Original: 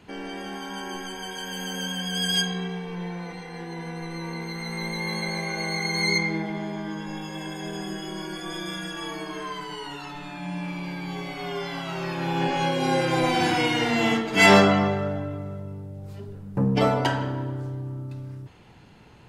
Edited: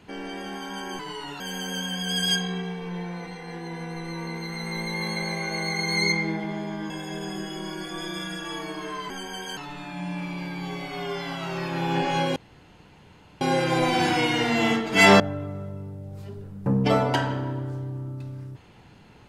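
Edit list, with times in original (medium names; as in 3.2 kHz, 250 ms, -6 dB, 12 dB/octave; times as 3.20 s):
0.99–1.46 s: swap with 9.62–10.03 s
6.96–7.42 s: delete
12.82 s: insert room tone 1.05 s
14.61–15.11 s: delete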